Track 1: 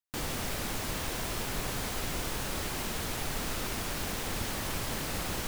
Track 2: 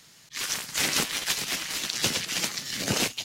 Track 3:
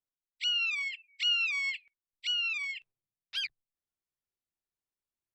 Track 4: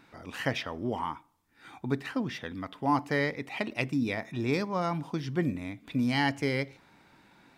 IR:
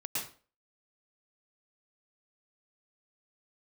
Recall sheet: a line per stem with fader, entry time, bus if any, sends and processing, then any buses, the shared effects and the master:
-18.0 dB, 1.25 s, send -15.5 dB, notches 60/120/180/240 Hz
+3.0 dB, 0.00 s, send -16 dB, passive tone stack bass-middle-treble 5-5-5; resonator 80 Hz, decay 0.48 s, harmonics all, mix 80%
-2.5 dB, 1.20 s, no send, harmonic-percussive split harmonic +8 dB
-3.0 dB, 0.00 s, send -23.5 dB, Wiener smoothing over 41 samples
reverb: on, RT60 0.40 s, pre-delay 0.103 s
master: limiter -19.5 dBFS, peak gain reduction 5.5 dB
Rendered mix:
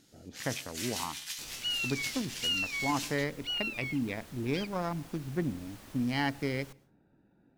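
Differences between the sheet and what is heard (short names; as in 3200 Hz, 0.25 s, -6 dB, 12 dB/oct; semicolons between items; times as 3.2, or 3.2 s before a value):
stem 3 -2.5 dB -> -10.5 dB; reverb return -6.5 dB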